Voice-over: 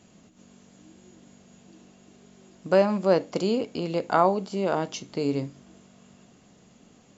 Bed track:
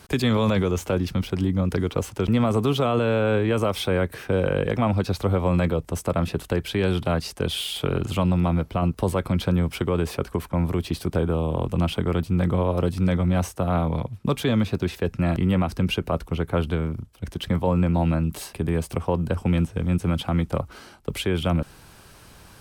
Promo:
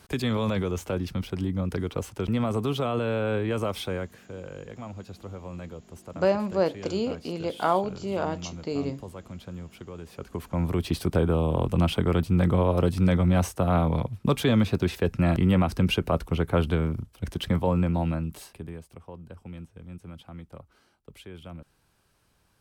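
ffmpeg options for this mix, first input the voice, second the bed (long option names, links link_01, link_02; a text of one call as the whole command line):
ffmpeg -i stem1.wav -i stem2.wav -filter_complex "[0:a]adelay=3500,volume=-3dB[link_01];[1:a]volume=12dB,afade=type=out:start_time=3.76:duration=0.47:silence=0.251189,afade=type=in:start_time=10.09:duration=0.84:silence=0.133352,afade=type=out:start_time=17.28:duration=1.56:silence=0.105925[link_02];[link_01][link_02]amix=inputs=2:normalize=0" out.wav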